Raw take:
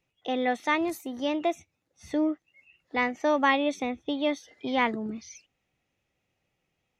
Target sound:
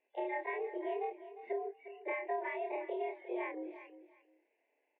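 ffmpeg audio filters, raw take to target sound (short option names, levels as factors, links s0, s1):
-filter_complex "[0:a]afftfilt=real='re':imag='-im':win_size=4096:overlap=0.75,equalizer=f=770:w=1.9:g=-3.5,acompressor=threshold=0.00891:ratio=12,atempo=1.4,asplit=2[s0][s1];[s1]aecho=0:1:354|708:0.211|0.0423[s2];[s0][s2]amix=inputs=2:normalize=0,highpass=f=260:t=q:w=0.5412,highpass=f=260:t=q:w=1.307,lowpass=f=2200:t=q:w=0.5176,lowpass=f=2200:t=q:w=0.7071,lowpass=f=2200:t=q:w=1.932,afreqshift=100,asuperstop=centerf=1300:order=4:qfactor=2.2,volume=2.51"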